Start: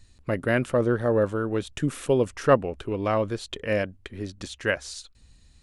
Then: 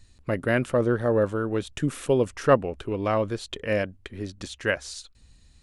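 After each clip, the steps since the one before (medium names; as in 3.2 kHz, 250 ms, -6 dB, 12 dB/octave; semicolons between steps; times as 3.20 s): no audible change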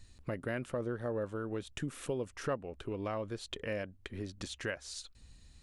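compression 2.5:1, threshold -37 dBFS, peak gain reduction 16.5 dB; trim -2 dB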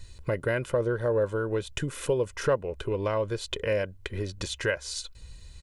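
comb 2 ms, depth 58%; trim +8 dB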